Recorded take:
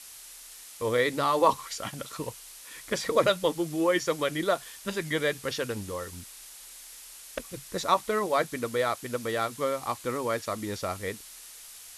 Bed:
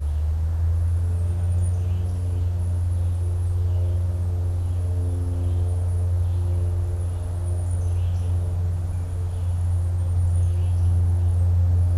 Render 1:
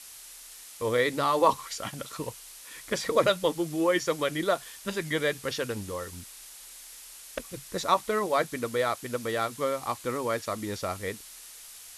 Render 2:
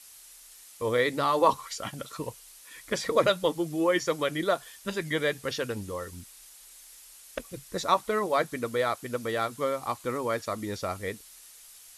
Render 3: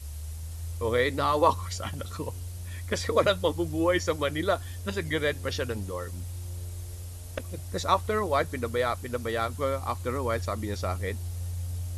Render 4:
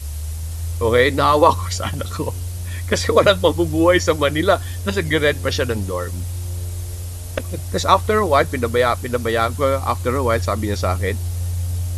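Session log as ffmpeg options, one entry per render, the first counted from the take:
-af anull
-af "afftdn=nr=6:nf=-47"
-filter_complex "[1:a]volume=0.188[s0];[0:a][s0]amix=inputs=2:normalize=0"
-af "volume=3.35,alimiter=limit=0.891:level=0:latency=1"

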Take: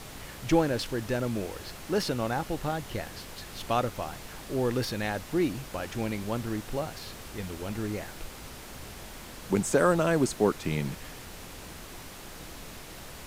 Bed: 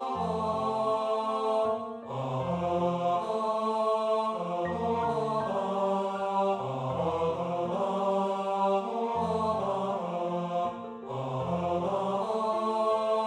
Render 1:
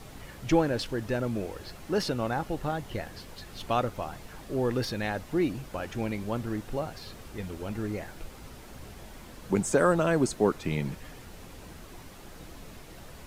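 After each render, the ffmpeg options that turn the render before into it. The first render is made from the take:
-af "afftdn=nr=7:nf=-44"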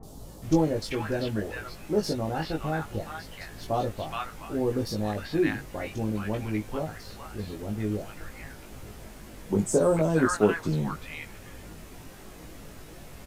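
-filter_complex "[0:a]asplit=2[s0][s1];[s1]adelay=19,volume=0.708[s2];[s0][s2]amix=inputs=2:normalize=0,acrossover=split=1000|3900[s3][s4][s5];[s5]adelay=30[s6];[s4]adelay=420[s7];[s3][s7][s6]amix=inputs=3:normalize=0"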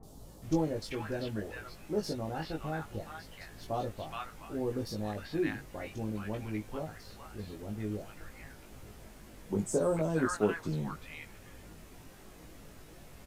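-af "volume=0.447"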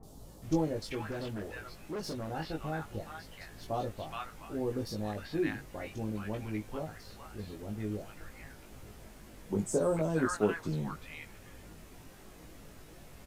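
-filter_complex "[0:a]asettb=1/sr,asplit=3[s0][s1][s2];[s0]atrim=end=1.114[s3];[s1]atrim=start=1.11:end=2.31,asetpts=PTS-STARTPTS,afade=t=in:d=0.004:c=qsin,afade=t=out:st=1.196:d=0.004:c=qsin,asoftclip=type=hard:threshold=0.0188[s4];[s2]atrim=start=2.306[s5];[s3][s4]acrossfade=d=0.004:c1=hsin:c2=qsin[s6];[s6][s5]acrossfade=d=0.004:c1=qsin:c2=hsin"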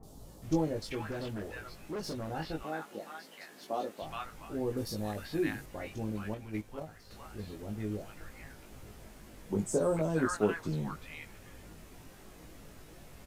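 -filter_complex "[0:a]asettb=1/sr,asplit=3[s0][s1][s2];[s0]atrim=end=2.634[s3];[s1]atrim=start=2.63:end=4.02,asetpts=PTS-STARTPTS,afade=t=in:d=0.004:c=qsin,afade=t=out:st=1.386:d=0.004:c=qsin,highpass=f=220:w=0.5412,highpass=f=220:w=1.3066[s4];[s2]atrim=start=4.016[s5];[s3][s4]acrossfade=d=0.004:c1=hsin:c2=qsin[s6];[s6][s5]acrossfade=d=0.004:c1=qsin:c2=hsin,asettb=1/sr,asplit=3[s7][s8][s9];[s7]atrim=end=4.774[s10];[s8]atrim=start=4.77:end=5.66,asetpts=PTS-STARTPTS,afade=t=in:d=0.004:c=qsin,afade=t=out:st=0.886:d=0.004:c=qsin,equalizer=f=12000:t=o:w=1.3:g=7[s11];[s9]atrim=start=5.656[s12];[s10][s11]acrossfade=d=0.004:c1=hsin:c2=qsin[s13];[s13][s12]acrossfade=d=0.004:c1=qsin:c2=hsin,asettb=1/sr,asplit=3[s14][s15][s16];[s14]atrim=end=6.344[s17];[s15]atrim=start=6.34:end=7.11,asetpts=PTS-STARTPTS,afade=t=in:d=0.004:c=qsin,afade=t=out:st=0.766:d=0.004:c=qsin,agate=range=0.501:threshold=0.0141:ratio=16:release=100:detection=peak[s18];[s16]atrim=start=7.106[s19];[s17][s18]acrossfade=d=0.004:c1=hsin:c2=qsin[s20];[s20][s19]acrossfade=d=0.004:c1=qsin:c2=hsin"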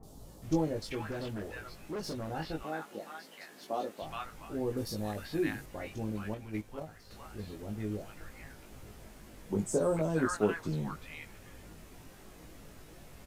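-af anull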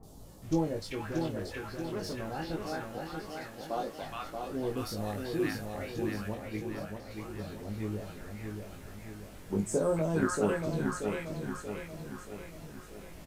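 -filter_complex "[0:a]asplit=2[s0][s1];[s1]adelay=30,volume=0.251[s2];[s0][s2]amix=inputs=2:normalize=0,asplit=2[s3][s4];[s4]aecho=0:1:631|1262|1893|2524|3155|3786:0.562|0.287|0.146|0.0746|0.038|0.0194[s5];[s3][s5]amix=inputs=2:normalize=0"

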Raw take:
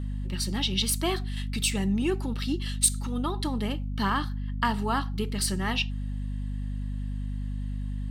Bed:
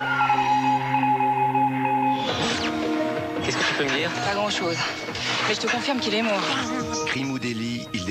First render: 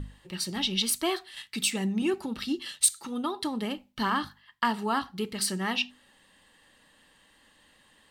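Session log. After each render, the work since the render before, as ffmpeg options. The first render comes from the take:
-af "bandreject=f=50:t=h:w=6,bandreject=f=100:t=h:w=6,bandreject=f=150:t=h:w=6,bandreject=f=200:t=h:w=6,bandreject=f=250:t=h:w=6"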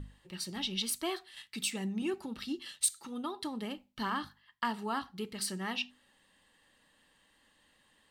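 -af "volume=0.447"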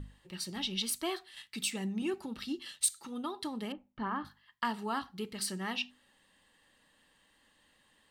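-filter_complex "[0:a]asettb=1/sr,asplit=3[s0][s1][s2];[s0]atrim=end=3.724[s3];[s1]atrim=start=3.72:end=4.25,asetpts=PTS-STARTPTS,afade=t=in:d=0.004:c=qsin,afade=t=out:st=0.526:d=0.004:c=qsin,lowpass=1500[s4];[s2]atrim=start=4.246[s5];[s3][s4]acrossfade=d=0.004:c1=hsin:c2=qsin[s6];[s6][s5]acrossfade=d=0.004:c1=qsin:c2=hsin"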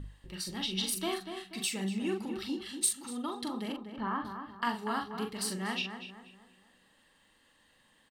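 -filter_complex "[0:a]asplit=2[s0][s1];[s1]adelay=42,volume=0.531[s2];[s0][s2]amix=inputs=2:normalize=0,asplit=2[s3][s4];[s4]adelay=241,lowpass=f=2200:p=1,volume=0.422,asplit=2[s5][s6];[s6]adelay=241,lowpass=f=2200:p=1,volume=0.41,asplit=2[s7][s8];[s8]adelay=241,lowpass=f=2200:p=1,volume=0.41,asplit=2[s9][s10];[s10]adelay=241,lowpass=f=2200:p=1,volume=0.41,asplit=2[s11][s12];[s12]adelay=241,lowpass=f=2200:p=1,volume=0.41[s13];[s3][s5][s7][s9][s11][s13]amix=inputs=6:normalize=0"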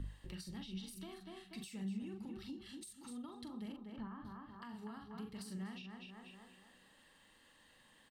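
-filter_complex "[0:a]alimiter=level_in=1.33:limit=0.0631:level=0:latency=1:release=74,volume=0.75,acrossover=split=180[s0][s1];[s1]acompressor=threshold=0.00282:ratio=10[s2];[s0][s2]amix=inputs=2:normalize=0"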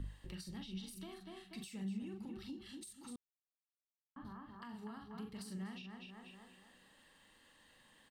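-filter_complex "[0:a]asplit=3[s0][s1][s2];[s0]atrim=end=3.16,asetpts=PTS-STARTPTS,afade=t=out:st=3.156:d=0.004:c=hsin[s3];[s1]atrim=start=3.16:end=4.16,asetpts=PTS-STARTPTS,volume=0[s4];[s2]atrim=start=4.16,asetpts=PTS-STARTPTS,afade=t=in:d=0.004:c=hsin[s5];[s3][s4][s5]concat=n=3:v=0:a=1"

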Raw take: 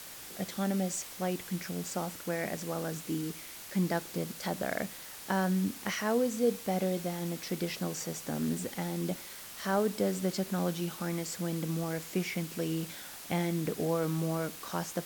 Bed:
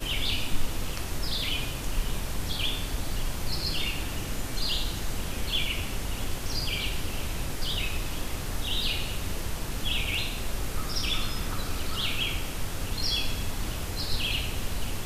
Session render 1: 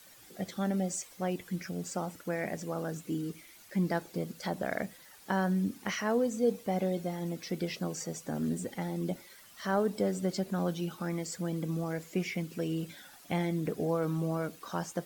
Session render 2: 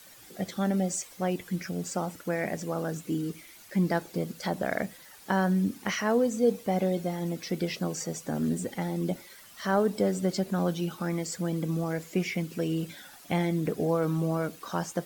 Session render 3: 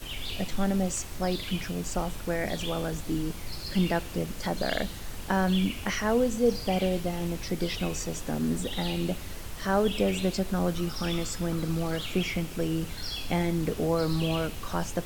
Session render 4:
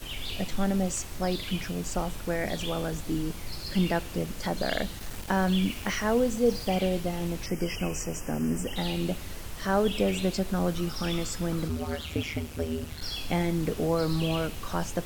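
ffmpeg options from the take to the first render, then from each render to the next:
-af "afftdn=nr=12:nf=-46"
-af "volume=1.58"
-filter_complex "[1:a]volume=0.422[s0];[0:a][s0]amix=inputs=2:normalize=0"
-filter_complex "[0:a]asettb=1/sr,asplit=3[s0][s1][s2];[s0]atrim=end=4.994[s3];[s1]atrim=start=4.99:end=6.76,asetpts=PTS-STARTPTS,afade=t=in:d=0.004:c=qsin,afade=t=out:st=1.766:d=0.004:c=qsin,aeval=exprs='val(0)*gte(abs(val(0)),0.0112)':c=same[s4];[s2]atrim=start=6.756[s5];[s3][s4]acrossfade=d=0.004:c1=hsin:c2=qsin[s6];[s6][s5]acrossfade=d=0.004:c1=qsin:c2=hsin,asettb=1/sr,asplit=3[s7][s8][s9];[s7]atrim=end=7.464[s10];[s8]atrim=start=7.46:end=8.76,asetpts=PTS-STARTPTS,afade=t=in:d=0.004:c=qsin,afade=t=out:st=1.296:d=0.004:c=qsin,asuperstop=centerf=3900:order=12:qfactor=2.3[s11];[s9]atrim=start=8.756[s12];[s10][s11]acrossfade=d=0.004:c1=hsin:c2=qsin[s13];[s13][s12]acrossfade=d=0.004:c1=qsin:c2=hsin,asplit=3[s14][s15][s16];[s14]afade=t=out:st=11.68:d=0.02[s17];[s15]aeval=exprs='val(0)*sin(2*PI*77*n/s)':c=same,afade=t=in:st=11.68:d=0.02,afade=t=out:st=13:d=0.02[s18];[s16]afade=t=in:st=13:d=0.02[s19];[s17][s18][s19]amix=inputs=3:normalize=0"

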